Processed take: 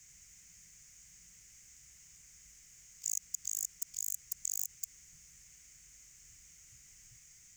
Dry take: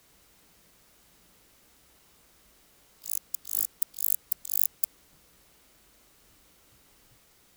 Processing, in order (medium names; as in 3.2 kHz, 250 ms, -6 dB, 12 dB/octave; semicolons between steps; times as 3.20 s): FFT filter 150 Hz 0 dB, 270 Hz -16 dB, 770 Hz -18 dB, 1.2 kHz -14 dB, 2.1 kHz +2 dB, 4 kHz -10 dB, 6.7 kHz +15 dB, 10 kHz -7 dB; peak limiter -20 dBFS, peak gain reduction 11 dB